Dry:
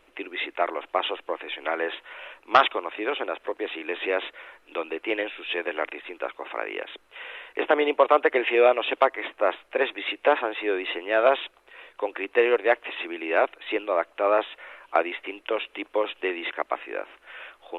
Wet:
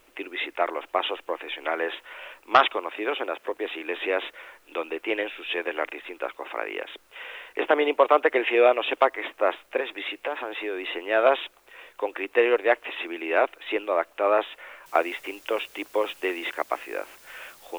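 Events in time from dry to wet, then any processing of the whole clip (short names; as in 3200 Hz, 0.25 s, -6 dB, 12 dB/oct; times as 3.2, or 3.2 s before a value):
2.78–3.49 HPF 92 Hz
9.8–10.93 compressor 3:1, threshold -28 dBFS
14.86 noise floor step -66 dB -53 dB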